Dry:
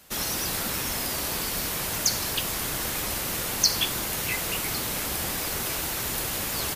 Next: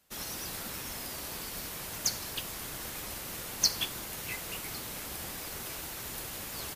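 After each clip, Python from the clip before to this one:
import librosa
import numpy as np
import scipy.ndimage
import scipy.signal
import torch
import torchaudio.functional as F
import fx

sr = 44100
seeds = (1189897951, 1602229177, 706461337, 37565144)

y = fx.upward_expand(x, sr, threshold_db=-41.0, expansion=1.5)
y = y * 10.0 ** (-4.0 / 20.0)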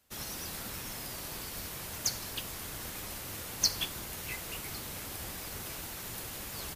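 y = fx.octave_divider(x, sr, octaves=1, level_db=-1.0)
y = y * 10.0 ** (-1.5 / 20.0)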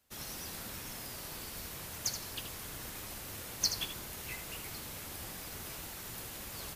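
y = x + 10.0 ** (-9.0 / 20.0) * np.pad(x, (int(78 * sr / 1000.0), 0))[:len(x)]
y = y * 10.0 ** (-3.5 / 20.0)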